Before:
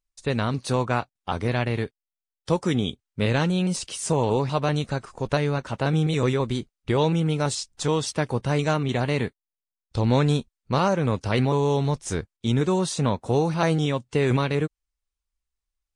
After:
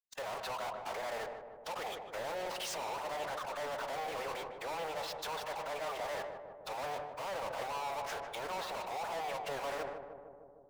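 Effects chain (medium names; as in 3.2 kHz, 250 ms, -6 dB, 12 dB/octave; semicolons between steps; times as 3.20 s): gate -42 dBFS, range -35 dB; low-pass 5.3 kHz 12 dB/octave; low-pass that closes with the level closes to 860 Hz, closed at -23 dBFS; steep high-pass 620 Hz 48 dB/octave; reverse; compression 6:1, threshold -40 dBFS, peak gain reduction 15 dB; reverse; waveshaping leveller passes 3; peak limiter -35 dBFS, peak gain reduction 7 dB; waveshaping leveller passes 5; time stretch by phase-locked vocoder 0.67×; on a send: filtered feedback delay 153 ms, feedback 75%, low-pass 1.2 kHz, level -7 dB; on the sum: decay stretcher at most 49 dB/s; trim -2 dB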